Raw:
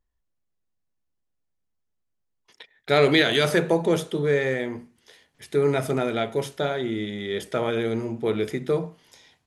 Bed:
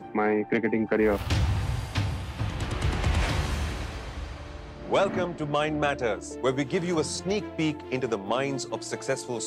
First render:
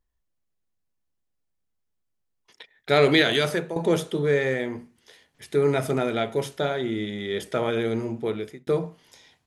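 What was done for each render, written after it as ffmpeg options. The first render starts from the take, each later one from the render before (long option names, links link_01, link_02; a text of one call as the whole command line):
ffmpeg -i in.wav -filter_complex "[0:a]asplit=3[link_01][link_02][link_03];[link_01]atrim=end=3.76,asetpts=PTS-STARTPTS,afade=type=out:start_time=3.3:duration=0.46:silence=0.211349[link_04];[link_02]atrim=start=3.76:end=8.67,asetpts=PTS-STARTPTS,afade=type=in:duration=0.004:curve=hsin:silence=0.211349,afade=type=out:start_time=4.37:duration=0.54[link_05];[link_03]atrim=start=8.67,asetpts=PTS-STARTPTS,afade=type=in:duration=0.004:curve=hsin[link_06];[link_04][link_05][link_06]concat=n=3:v=0:a=1" out.wav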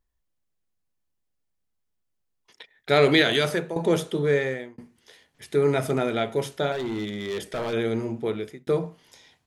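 ffmpeg -i in.wav -filter_complex "[0:a]asettb=1/sr,asplit=3[link_01][link_02][link_03];[link_01]atrim=end=6.724[link_04];[link_02]atrim=start=6.72:end=7.73,asetpts=PTS-STARTPTS,afade=type=in:duration=0.004:curve=qsin,afade=type=out:start_time=1.006:duration=0.004:curve=qsin,asoftclip=type=hard:threshold=-25.5dB[link_05];[link_03]atrim=start=7.726[link_06];[link_04][link_05]acrossfade=duration=0.004:curve1=hsin:curve2=qsin[link_07];[link_07][link_06]acrossfade=duration=0.004:curve1=qsin:curve2=hsin,asplit=2[link_08][link_09];[link_08]atrim=end=4.78,asetpts=PTS-STARTPTS,afade=type=out:start_time=4.36:duration=0.42[link_10];[link_09]atrim=start=4.78,asetpts=PTS-STARTPTS,afade=type=in:duration=0.004:curve=hsin[link_11];[link_10][link_11]concat=n=2:v=0:a=1" out.wav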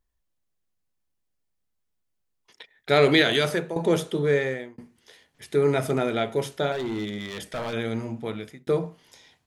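ffmpeg -i in.wav -filter_complex "[0:a]asettb=1/sr,asplit=3[link_01][link_02][link_03];[link_01]atrim=end=7.184[link_04];[link_02]atrim=start=7.18:end=8.6,asetpts=PTS-STARTPTS,afade=type=in:duration=0.004:curve=qsin,afade=type=out:start_time=1.416:duration=0.004:curve=qsin,equalizer=frequency=390:width_type=o:width=0.42:gain=-11[link_05];[link_03]atrim=start=8.596[link_06];[link_04][link_05]acrossfade=duration=0.004:curve1=hsin:curve2=qsin[link_07];[link_07][link_06]acrossfade=duration=0.004:curve1=qsin:curve2=hsin" out.wav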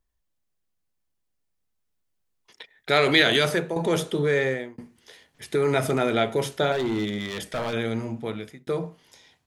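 ffmpeg -i in.wav -filter_complex "[0:a]acrossover=split=750[link_01][link_02];[link_01]alimiter=limit=-20dB:level=0:latency=1[link_03];[link_03][link_02]amix=inputs=2:normalize=0,dynaudnorm=framelen=380:gausssize=11:maxgain=4dB" out.wav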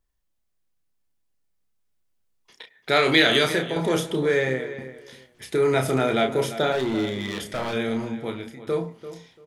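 ffmpeg -i in.wav -filter_complex "[0:a]asplit=2[link_01][link_02];[link_02]adelay=31,volume=-6dB[link_03];[link_01][link_03]amix=inputs=2:normalize=0,asplit=2[link_04][link_05];[link_05]adelay=341,lowpass=frequency=3300:poles=1,volume=-13dB,asplit=2[link_06][link_07];[link_07]adelay=341,lowpass=frequency=3300:poles=1,volume=0.21[link_08];[link_04][link_06][link_08]amix=inputs=3:normalize=0" out.wav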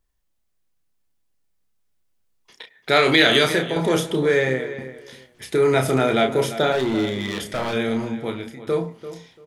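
ffmpeg -i in.wav -af "volume=3dB,alimiter=limit=-2dB:level=0:latency=1" out.wav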